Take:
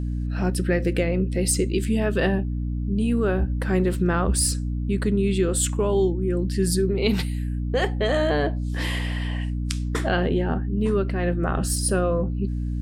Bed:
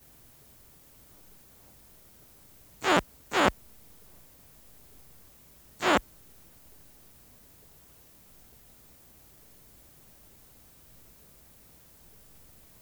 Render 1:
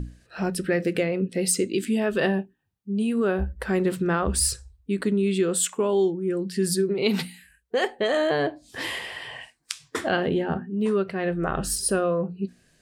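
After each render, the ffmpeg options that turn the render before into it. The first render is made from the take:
-af "bandreject=f=60:t=h:w=6,bandreject=f=120:t=h:w=6,bandreject=f=180:t=h:w=6,bandreject=f=240:t=h:w=6,bandreject=f=300:t=h:w=6"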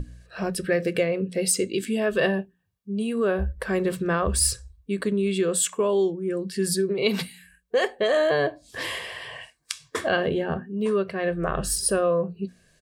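-af "bandreject=f=60:t=h:w=6,bandreject=f=120:t=h:w=6,bandreject=f=180:t=h:w=6,aecho=1:1:1.8:0.42"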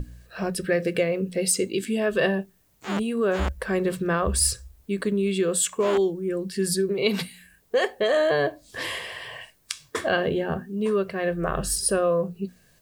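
-filter_complex "[1:a]volume=0.355[s0];[0:a][s0]amix=inputs=2:normalize=0"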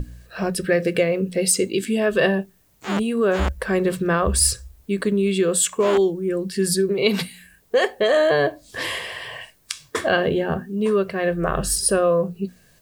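-af "volume=1.58,alimiter=limit=0.891:level=0:latency=1"

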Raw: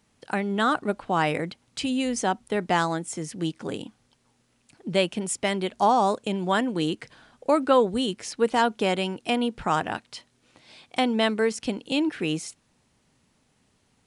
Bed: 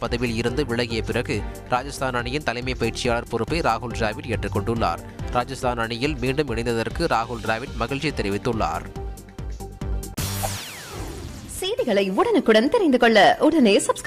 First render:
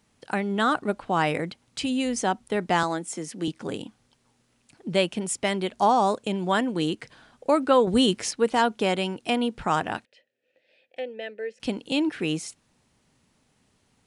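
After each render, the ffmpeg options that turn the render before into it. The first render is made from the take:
-filter_complex "[0:a]asettb=1/sr,asplit=3[s0][s1][s2];[s0]atrim=end=2.834[s3];[s1]atrim=start=2.83:end=3.48,asetpts=PTS-STARTPTS,afade=t=in:d=0.004:c=qsin,afade=t=out:st=0.646:d=0.004:c=qsin,highpass=f=180:w=0.5412,highpass=f=180:w=1.3066[s4];[s2]atrim=start=3.476[s5];[s3][s4]acrossfade=d=0.004:c1=hsin:c2=qsin[s6];[s6][s5]acrossfade=d=0.004:c1=qsin:c2=hsin,asettb=1/sr,asplit=3[s7][s8][s9];[s7]atrim=end=7.874[s10];[s8]atrim=start=7.87:end=8.31,asetpts=PTS-STARTPTS,afade=t=in:d=0.004:c=qsin,afade=t=out:st=0.436:d=0.004:c=qsin,acontrast=57[s11];[s9]atrim=start=8.306[s12];[s10][s11]acrossfade=d=0.004:c1=hsin:c2=qsin[s13];[s13][s12]acrossfade=d=0.004:c1=qsin:c2=hsin,asettb=1/sr,asplit=3[s14][s15][s16];[s14]atrim=end=10.054[s17];[s15]atrim=start=10.05:end=11.6,asetpts=PTS-STARTPTS,afade=t=in:d=0.004:c=qsin,afade=t=out:st=1.546:d=0.004:c=qsin,asplit=3[s18][s19][s20];[s18]bandpass=f=530:t=q:w=8,volume=1[s21];[s19]bandpass=f=1840:t=q:w=8,volume=0.501[s22];[s20]bandpass=f=2480:t=q:w=8,volume=0.355[s23];[s21][s22][s23]amix=inputs=3:normalize=0[s24];[s16]atrim=start=11.596[s25];[s17][s24]acrossfade=d=0.004:c1=hsin:c2=qsin[s26];[s26][s25]acrossfade=d=0.004:c1=qsin:c2=hsin"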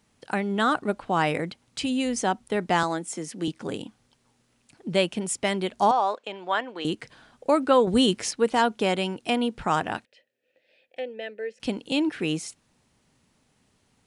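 -filter_complex "[0:a]asettb=1/sr,asplit=3[s0][s1][s2];[s0]atrim=end=5.914[s3];[s1]atrim=start=5.91:end=6.85,asetpts=PTS-STARTPTS,afade=t=in:d=0.004:c=qsin,afade=t=out:st=0.936:d=0.004:c=qsin,highpass=600,lowpass=3500[s4];[s2]atrim=start=6.846[s5];[s3][s4]acrossfade=d=0.004:c1=hsin:c2=qsin[s6];[s6][s5]acrossfade=d=0.004:c1=qsin:c2=hsin"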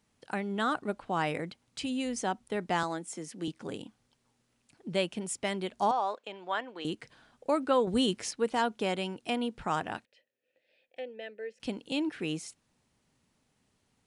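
-af "volume=0.447"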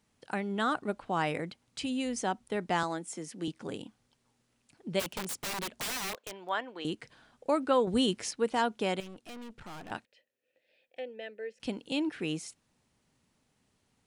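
-filter_complex "[0:a]asplit=3[s0][s1][s2];[s0]afade=t=out:st=4.99:d=0.02[s3];[s1]aeval=exprs='(mod(33.5*val(0)+1,2)-1)/33.5':c=same,afade=t=in:st=4.99:d=0.02,afade=t=out:st=6.47:d=0.02[s4];[s2]afade=t=in:st=6.47:d=0.02[s5];[s3][s4][s5]amix=inputs=3:normalize=0,asettb=1/sr,asplit=3[s6][s7][s8];[s6]atrim=end=9.004[s9];[s7]atrim=start=9:end=9.91,asetpts=PTS-STARTPTS,afade=t=in:d=0.004:c=qsin,afade=t=out:st=0.906:d=0.004:c=qsin,aeval=exprs='(tanh(141*val(0)+0.7)-tanh(0.7))/141':c=same[s10];[s8]atrim=start=9.906[s11];[s9][s10]acrossfade=d=0.004:c1=hsin:c2=qsin[s12];[s12][s11]acrossfade=d=0.004:c1=qsin:c2=hsin"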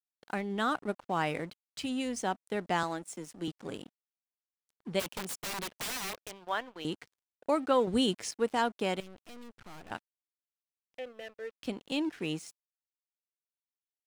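-af "aeval=exprs='sgn(val(0))*max(abs(val(0))-0.00299,0)':c=same"

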